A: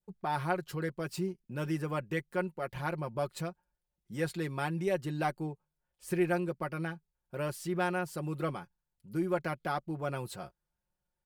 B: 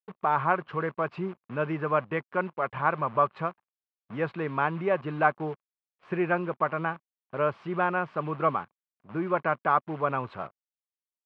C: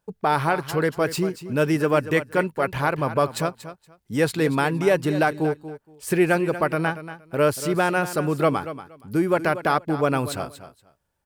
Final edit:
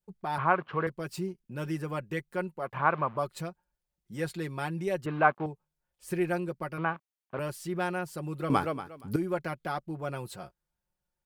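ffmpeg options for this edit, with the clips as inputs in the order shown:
-filter_complex "[1:a]asplit=4[a][b][c][d];[0:a]asplit=6[e][f][g][h][i][j];[e]atrim=end=0.382[k];[a]atrim=start=0.378:end=0.872[l];[f]atrim=start=0.868:end=2.8[m];[b]atrim=start=2.56:end=3.26[n];[g]atrim=start=3.02:end=5.062[o];[c]atrim=start=5.058:end=5.462[p];[h]atrim=start=5.458:end=6.782[q];[d]atrim=start=6.778:end=7.392[r];[i]atrim=start=7.388:end=8.502[s];[2:a]atrim=start=8.498:end=9.162[t];[j]atrim=start=9.158[u];[k][l]acrossfade=d=0.004:c1=hsin:c2=hsin[v];[v][m]acrossfade=d=0.004:c1=hsin:c2=hsin[w];[w][n]acrossfade=d=0.24:c1=tri:c2=tri[x];[x][o]acrossfade=d=0.24:c1=tri:c2=tri[y];[y][p]acrossfade=d=0.004:c1=hsin:c2=hsin[z];[z][q]acrossfade=d=0.004:c1=hsin:c2=hsin[aa];[aa][r]acrossfade=d=0.004:c1=hsin:c2=hsin[ab];[ab][s]acrossfade=d=0.004:c1=hsin:c2=hsin[ac];[ac][t]acrossfade=d=0.004:c1=hsin:c2=hsin[ad];[ad][u]acrossfade=d=0.004:c1=hsin:c2=hsin"

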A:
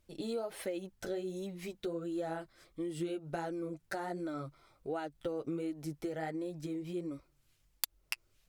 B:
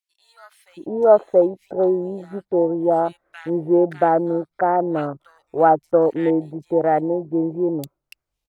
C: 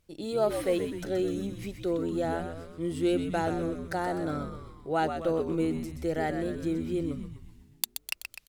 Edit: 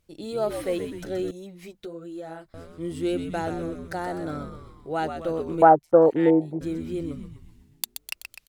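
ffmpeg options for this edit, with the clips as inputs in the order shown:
-filter_complex "[2:a]asplit=3[a][b][c];[a]atrim=end=1.312[d];[0:a]atrim=start=1.308:end=2.542[e];[b]atrim=start=2.538:end=5.622[f];[1:a]atrim=start=5.618:end=6.612[g];[c]atrim=start=6.608[h];[d][e]acrossfade=d=0.004:c1=hsin:c2=hsin[i];[i][f]acrossfade=d=0.004:c1=hsin:c2=hsin[j];[j][g]acrossfade=d=0.004:c1=hsin:c2=hsin[k];[k][h]acrossfade=d=0.004:c1=hsin:c2=hsin"

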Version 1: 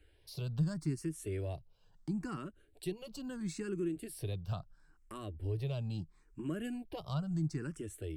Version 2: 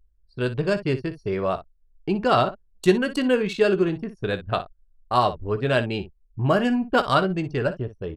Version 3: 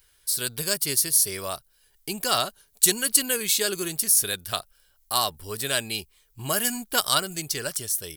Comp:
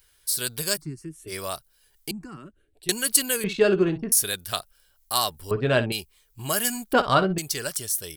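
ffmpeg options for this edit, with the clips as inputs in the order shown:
-filter_complex "[0:a]asplit=2[a][b];[1:a]asplit=3[c][d][e];[2:a]asplit=6[f][g][h][i][j][k];[f]atrim=end=0.82[l];[a]atrim=start=0.76:end=1.33[m];[g]atrim=start=1.27:end=2.112[n];[b]atrim=start=2.108:end=2.892[o];[h]atrim=start=2.888:end=3.442[p];[c]atrim=start=3.438:end=4.122[q];[i]atrim=start=4.118:end=5.512[r];[d]atrim=start=5.508:end=5.922[s];[j]atrim=start=5.918:end=6.932[t];[e]atrim=start=6.928:end=7.382[u];[k]atrim=start=7.378[v];[l][m]acrossfade=d=0.06:c1=tri:c2=tri[w];[w][n]acrossfade=d=0.06:c1=tri:c2=tri[x];[x][o]acrossfade=d=0.004:c1=hsin:c2=hsin[y];[y][p]acrossfade=d=0.004:c1=hsin:c2=hsin[z];[z][q]acrossfade=d=0.004:c1=hsin:c2=hsin[aa];[aa][r]acrossfade=d=0.004:c1=hsin:c2=hsin[ab];[ab][s]acrossfade=d=0.004:c1=hsin:c2=hsin[ac];[ac][t]acrossfade=d=0.004:c1=hsin:c2=hsin[ad];[ad][u]acrossfade=d=0.004:c1=hsin:c2=hsin[ae];[ae][v]acrossfade=d=0.004:c1=hsin:c2=hsin"

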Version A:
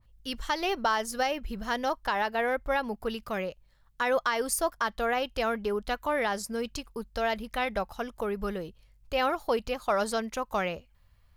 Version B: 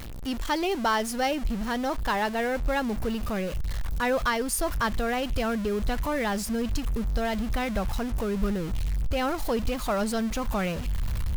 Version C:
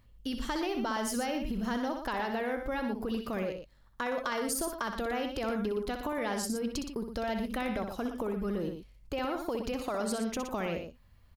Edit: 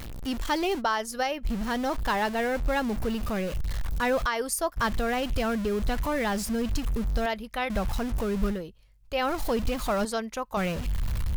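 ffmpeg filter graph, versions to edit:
-filter_complex "[0:a]asplit=5[a][b][c][d][e];[1:a]asplit=6[f][g][h][i][j][k];[f]atrim=end=0.82[l];[a]atrim=start=0.78:end=1.47[m];[g]atrim=start=1.43:end=4.27[n];[b]atrim=start=4.25:end=4.78[o];[h]atrim=start=4.76:end=7.262[p];[c]atrim=start=7.258:end=7.702[q];[i]atrim=start=7.698:end=8.63[r];[d]atrim=start=8.47:end=9.34[s];[j]atrim=start=9.18:end=10.052[t];[e]atrim=start=10.048:end=10.572[u];[k]atrim=start=10.568[v];[l][m]acrossfade=d=0.04:c1=tri:c2=tri[w];[w][n]acrossfade=d=0.04:c1=tri:c2=tri[x];[x][o]acrossfade=d=0.02:c1=tri:c2=tri[y];[y][p]acrossfade=d=0.02:c1=tri:c2=tri[z];[z][q]acrossfade=d=0.004:c1=hsin:c2=hsin[aa];[aa][r]acrossfade=d=0.004:c1=hsin:c2=hsin[ab];[ab][s]acrossfade=d=0.16:c1=tri:c2=tri[ac];[ac][t]acrossfade=d=0.16:c1=tri:c2=tri[ad];[ad][u]acrossfade=d=0.004:c1=hsin:c2=hsin[ae];[ae][v]acrossfade=d=0.004:c1=hsin:c2=hsin"

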